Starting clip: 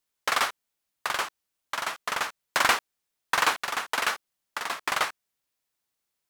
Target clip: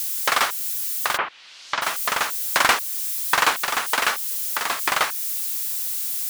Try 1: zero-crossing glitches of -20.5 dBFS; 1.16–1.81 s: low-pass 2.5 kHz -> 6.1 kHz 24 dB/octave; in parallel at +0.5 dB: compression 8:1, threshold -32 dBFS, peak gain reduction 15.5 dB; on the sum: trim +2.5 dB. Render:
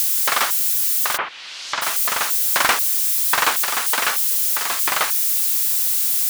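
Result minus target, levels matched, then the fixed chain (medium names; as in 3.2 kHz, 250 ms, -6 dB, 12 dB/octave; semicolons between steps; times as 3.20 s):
zero-crossing glitches: distortion +10 dB
zero-crossing glitches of -31 dBFS; 1.16–1.81 s: low-pass 2.5 kHz -> 6.1 kHz 24 dB/octave; in parallel at +0.5 dB: compression 8:1, threshold -32 dBFS, peak gain reduction 15 dB; on the sum: trim +2.5 dB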